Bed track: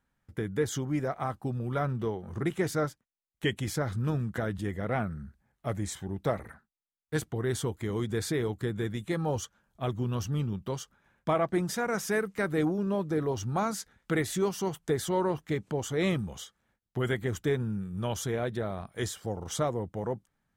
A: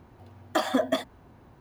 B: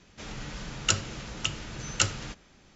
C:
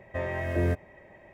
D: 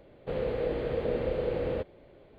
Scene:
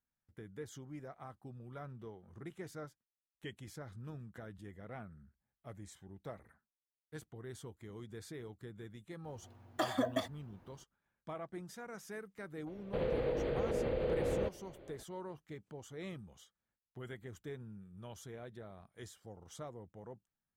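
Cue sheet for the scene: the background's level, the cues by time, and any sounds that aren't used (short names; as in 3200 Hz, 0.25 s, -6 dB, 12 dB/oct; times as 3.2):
bed track -17.5 dB
9.24 add A -9 dB
12.66 add D -0.5 dB, fades 0.02 s + limiter -26 dBFS
not used: B, C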